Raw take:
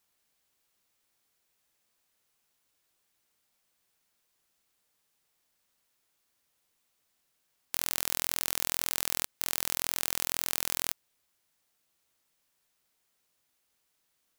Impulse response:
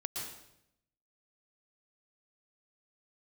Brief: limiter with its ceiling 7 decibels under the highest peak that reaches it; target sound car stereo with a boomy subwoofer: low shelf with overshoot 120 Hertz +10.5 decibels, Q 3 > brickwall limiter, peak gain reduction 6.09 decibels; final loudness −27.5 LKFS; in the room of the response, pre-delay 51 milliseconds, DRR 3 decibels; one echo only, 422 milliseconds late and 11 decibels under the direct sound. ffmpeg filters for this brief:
-filter_complex "[0:a]alimiter=limit=-9.5dB:level=0:latency=1,aecho=1:1:422:0.282,asplit=2[link_01][link_02];[1:a]atrim=start_sample=2205,adelay=51[link_03];[link_02][link_03]afir=irnorm=-1:irlink=0,volume=-4dB[link_04];[link_01][link_04]amix=inputs=2:normalize=0,lowshelf=frequency=120:width_type=q:width=3:gain=10.5,volume=13dB,alimiter=limit=-2.5dB:level=0:latency=1"

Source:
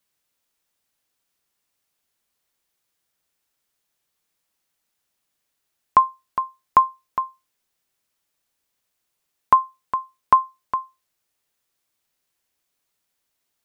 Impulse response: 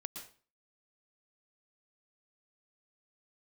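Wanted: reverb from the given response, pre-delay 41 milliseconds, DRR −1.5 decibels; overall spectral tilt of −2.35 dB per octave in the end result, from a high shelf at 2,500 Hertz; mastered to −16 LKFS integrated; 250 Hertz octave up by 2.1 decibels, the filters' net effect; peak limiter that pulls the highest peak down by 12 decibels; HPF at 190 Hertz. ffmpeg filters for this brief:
-filter_complex "[0:a]highpass=190,equalizer=frequency=250:width_type=o:gain=4.5,highshelf=frequency=2500:gain=-4.5,alimiter=limit=-14.5dB:level=0:latency=1,asplit=2[link_01][link_02];[1:a]atrim=start_sample=2205,adelay=41[link_03];[link_02][link_03]afir=irnorm=-1:irlink=0,volume=4dB[link_04];[link_01][link_04]amix=inputs=2:normalize=0,volume=7dB"

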